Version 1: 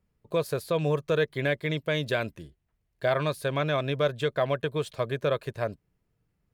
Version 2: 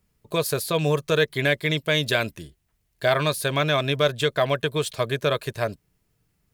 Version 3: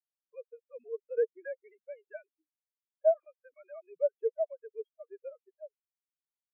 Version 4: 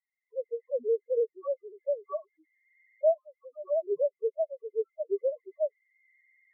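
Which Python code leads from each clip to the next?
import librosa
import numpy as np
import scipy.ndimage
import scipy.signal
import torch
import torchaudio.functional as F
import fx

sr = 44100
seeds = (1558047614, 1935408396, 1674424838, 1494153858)

y1 = fx.high_shelf(x, sr, hz=3000.0, db=11.0)
y1 = fx.notch(y1, sr, hz=520.0, q=12.0)
y1 = y1 * 10.0 ** (4.0 / 20.0)
y2 = fx.sine_speech(y1, sr)
y2 = fx.spectral_expand(y2, sr, expansion=2.5)
y2 = y2 * 10.0 ** (-8.0 / 20.0)
y3 = fx.freq_compress(y2, sr, knee_hz=1000.0, ratio=4.0)
y3 = fx.recorder_agc(y3, sr, target_db=-21.0, rise_db_per_s=30.0, max_gain_db=30)
y3 = fx.spec_topn(y3, sr, count=2)
y3 = y3 * 10.0 ** (1.5 / 20.0)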